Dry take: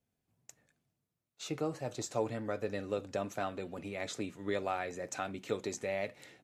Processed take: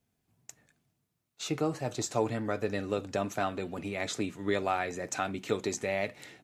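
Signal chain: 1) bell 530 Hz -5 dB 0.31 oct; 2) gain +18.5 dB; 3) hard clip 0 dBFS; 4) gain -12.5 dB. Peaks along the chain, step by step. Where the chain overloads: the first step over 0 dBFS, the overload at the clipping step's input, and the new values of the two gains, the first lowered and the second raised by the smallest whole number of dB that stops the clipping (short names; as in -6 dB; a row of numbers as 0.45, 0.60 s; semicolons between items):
-21.0, -2.5, -2.5, -15.0 dBFS; no overload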